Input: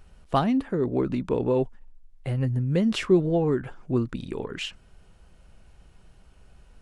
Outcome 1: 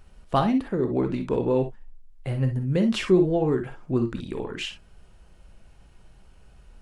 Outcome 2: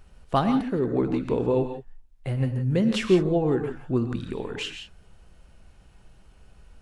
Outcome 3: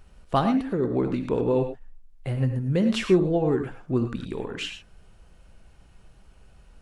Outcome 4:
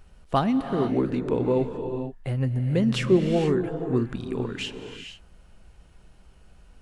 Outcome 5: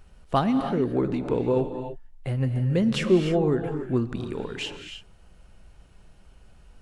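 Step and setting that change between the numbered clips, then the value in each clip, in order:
reverb whose tail is shaped and stops, gate: 80, 190, 130, 500, 330 milliseconds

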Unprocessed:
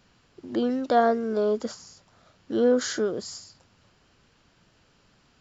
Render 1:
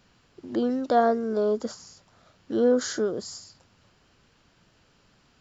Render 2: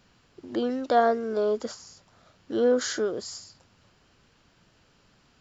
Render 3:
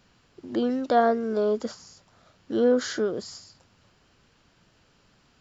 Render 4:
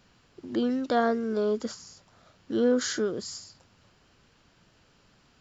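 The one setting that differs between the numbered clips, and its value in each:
dynamic equaliser, frequency: 2,500, 180, 7,900, 670 Hertz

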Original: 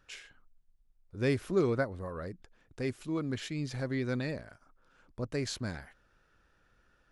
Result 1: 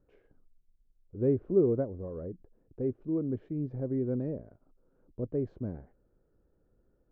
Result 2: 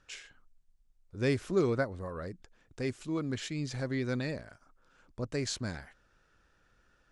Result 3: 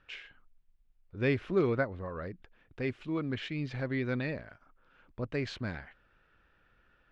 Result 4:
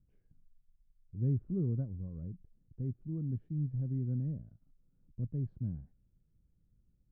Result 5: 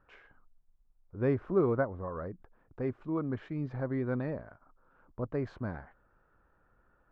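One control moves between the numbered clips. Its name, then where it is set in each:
low-pass with resonance, frequency: 440, 7,900, 2,800, 160, 1,100 Hertz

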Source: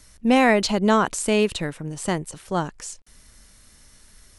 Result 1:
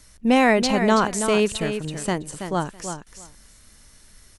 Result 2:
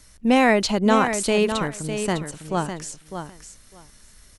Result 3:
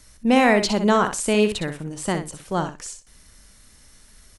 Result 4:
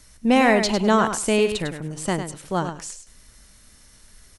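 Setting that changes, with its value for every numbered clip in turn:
repeating echo, delay time: 328, 604, 62, 102 milliseconds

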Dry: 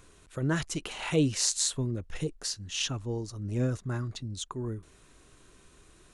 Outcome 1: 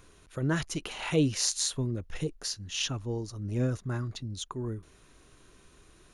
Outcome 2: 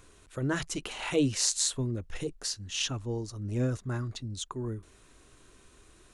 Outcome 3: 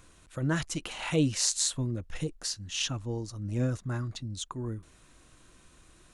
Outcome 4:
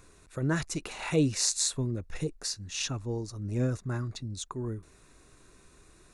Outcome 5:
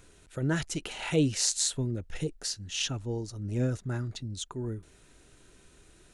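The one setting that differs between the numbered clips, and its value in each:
notch filter, centre frequency: 7,900, 160, 410, 3,100, 1,100 Hertz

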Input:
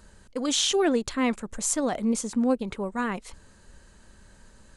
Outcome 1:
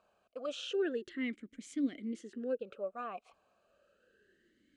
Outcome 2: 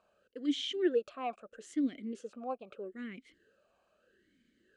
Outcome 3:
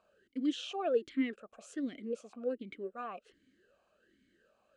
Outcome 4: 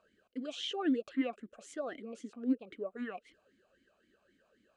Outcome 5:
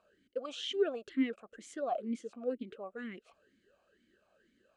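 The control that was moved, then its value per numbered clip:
formant filter swept between two vowels, speed: 0.3, 0.79, 1.3, 3.8, 2.1 Hertz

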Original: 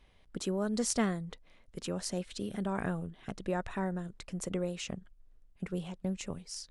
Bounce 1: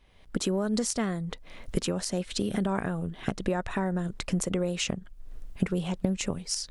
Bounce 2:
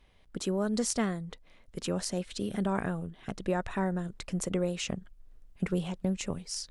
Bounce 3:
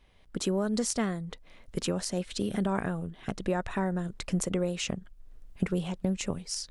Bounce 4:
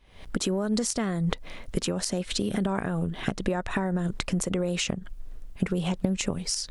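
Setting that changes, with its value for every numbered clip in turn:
camcorder AGC, rising by: 36, 5, 15, 90 dB per second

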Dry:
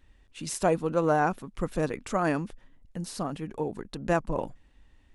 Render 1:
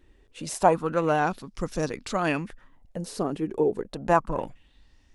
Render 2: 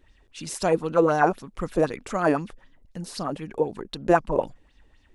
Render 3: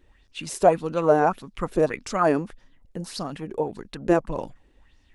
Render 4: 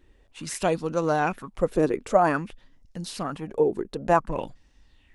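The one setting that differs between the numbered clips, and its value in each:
auto-filter bell, speed: 0.29, 3.9, 1.7, 0.53 Hertz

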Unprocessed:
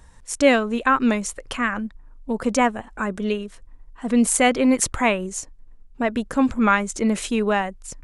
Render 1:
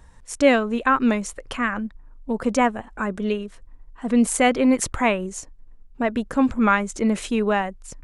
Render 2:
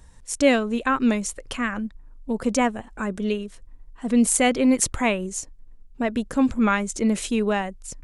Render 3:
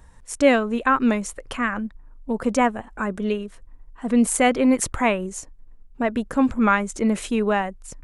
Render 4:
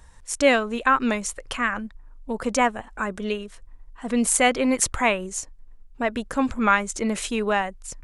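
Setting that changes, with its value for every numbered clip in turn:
parametric band, centre frequency: 16,000, 1,200, 5,200, 220 Hertz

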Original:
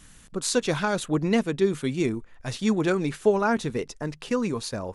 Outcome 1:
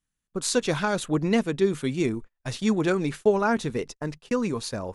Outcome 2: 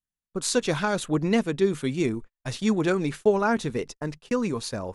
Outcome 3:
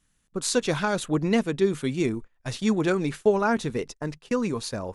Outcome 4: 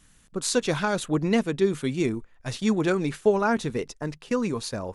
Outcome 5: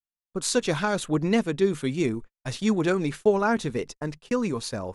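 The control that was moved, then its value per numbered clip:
noise gate, range: −33, −45, −19, −7, −58 decibels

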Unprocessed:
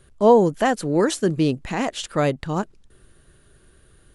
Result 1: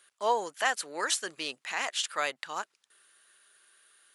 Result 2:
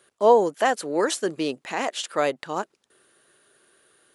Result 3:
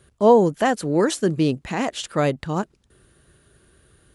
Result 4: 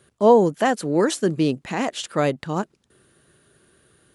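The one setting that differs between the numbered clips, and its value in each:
high-pass filter, corner frequency: 1,300, 440, 54, 140 Hertz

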